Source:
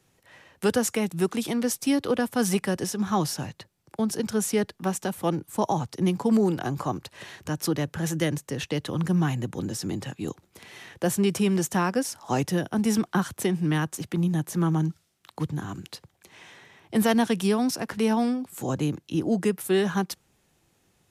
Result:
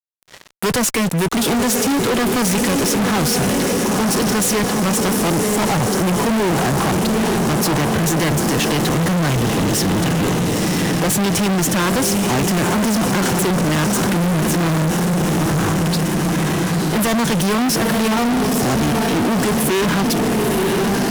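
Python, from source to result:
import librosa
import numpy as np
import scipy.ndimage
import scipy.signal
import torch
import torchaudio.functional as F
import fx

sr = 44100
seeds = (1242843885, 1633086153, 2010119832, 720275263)

y = fx.echo_diffused(x, sr, ms=940, feedback_pct=67, wet_db=-8.0)
y = fx.fuzz(y, sr, gain_db=40.0, gate_db=-47.0)
y = y * 10.0 ** (-2.5 / 20.0)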